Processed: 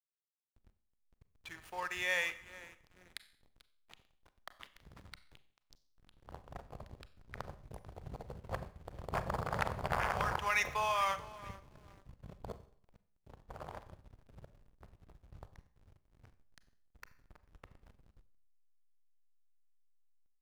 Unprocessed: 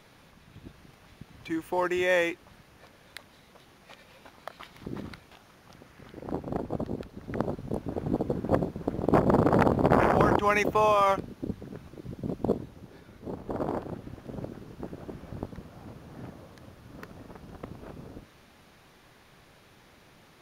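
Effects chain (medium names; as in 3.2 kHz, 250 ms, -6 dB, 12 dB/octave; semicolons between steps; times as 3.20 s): amplifier tone stack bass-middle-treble 10-0-10; on a send: feedback delay 442 ms, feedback 41%, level -16.5 dB; on the sum: hysteresis with a dead band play -44.5 dBFS; Schroeder reverb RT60 0.57 s, combs from 30 ms, DRR 13 dB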